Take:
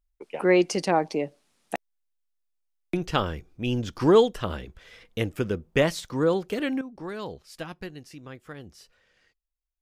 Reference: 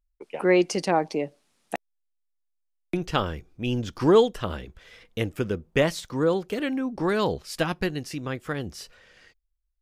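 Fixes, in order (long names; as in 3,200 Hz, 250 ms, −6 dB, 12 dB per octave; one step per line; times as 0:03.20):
level correction +11 dB, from 0:06.81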